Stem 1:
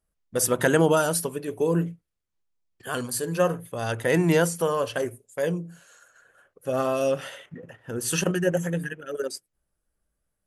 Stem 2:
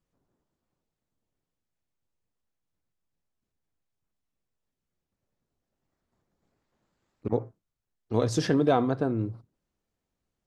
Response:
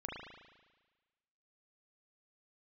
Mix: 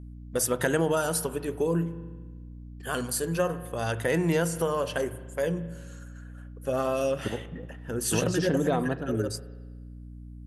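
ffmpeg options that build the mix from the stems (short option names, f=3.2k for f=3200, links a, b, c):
-filter_complex "[0:a]aeval=exprs='val(0)+0.00891*(sin(2*PI*60*n/s)+sin(2*PI*2*60*n/s)/2+sin(2*PI*3*60*n/s)/3+sin(2*PI*4*60*n/s)/4+sin(2*PI*5*60*n/s)/5)':c=same,volume=-1dB,asplit=3[a][b][c];[b]volume=-13dB[d];[1:a]volume=0.5dB,asplit=2[e][f];[f]volume=-19dB[g];[c]apad=whole_len=461621[h];[e][h]sidechaingate=range=-33dB:threshold=-37dB:ratio=16:detection=peak[i];[2:a]atrim=start_sample=2205[j];[d][g]amix=inputs=2:normalize=0[k];[k][j]afir=irnorm=-1:irlink=0[l];[a][i][l]amix=inputs=3:normalize=0,acompressor=threshold=-25dB:ratio=2"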